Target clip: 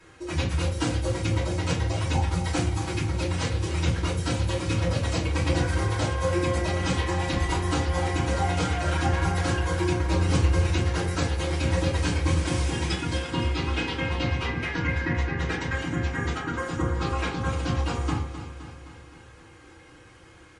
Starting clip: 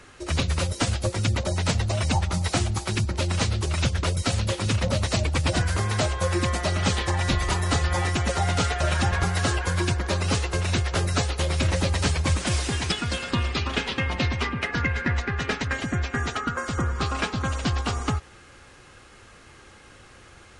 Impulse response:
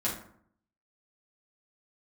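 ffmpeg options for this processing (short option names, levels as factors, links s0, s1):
-filter_complex "[0:a]asettb=1/sr,asplit=3[s0][s1][s2];[s0]atrim=end=10.044[s3];[s1]atrim=start=10.04:end=10.64,asetpts=PTS-STARTPTS,afade=t=in:d=0.004:c=qsin,afade=t=out:st=0.596:d=0.004:c=qsin,lowshelf=f=130:g=9.5[s4];[s2]atrim=start=10.636[s5];[s3][s4]acrossfade=d=0.004:c1=hsin:c2=qsin[s6];[s6][s5]acrossfade=d=0.004:c1=qsin:c2=hsin,aecho=1:1:259|518|777|1036|1295|1554|1813:0.266|0.16|0.0958|0.0575|0.0345|0.0207|0.0124[s7];[1:a]atrim=start_sample=2205,asetrate=66150,aresample=44100[s8];[s7][s8]afir=irnorm=-1:irlink=0,volume=0.473"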